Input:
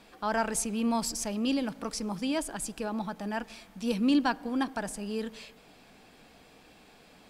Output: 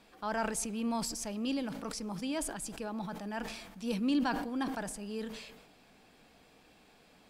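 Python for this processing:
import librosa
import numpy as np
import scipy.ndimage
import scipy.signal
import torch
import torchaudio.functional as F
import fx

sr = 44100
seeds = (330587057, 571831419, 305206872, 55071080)

y = fx.sustainer(x, sr, db_per_s=51.0)
y = y * 10.0 ** (-5.5 / 20.0)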